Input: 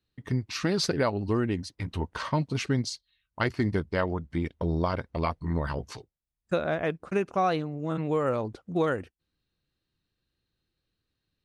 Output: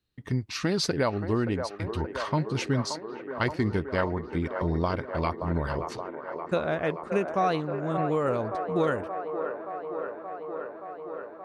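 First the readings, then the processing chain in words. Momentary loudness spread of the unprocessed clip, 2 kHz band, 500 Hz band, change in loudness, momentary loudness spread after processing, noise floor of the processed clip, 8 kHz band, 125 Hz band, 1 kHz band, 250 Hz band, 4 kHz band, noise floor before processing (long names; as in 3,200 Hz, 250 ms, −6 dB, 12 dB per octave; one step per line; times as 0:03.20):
7 LU, +1.0 dB, +2.0 dB, 0.0 dB, 10 LU, −43 dBFS, 0.0 dB, 0.0 dB, +2.0 dB, +0.5 dB, 0.0 dB, −84 dBFS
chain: delay with a band-pass on its return 575 ms, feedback 79%, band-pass 760 Hz, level −6 dB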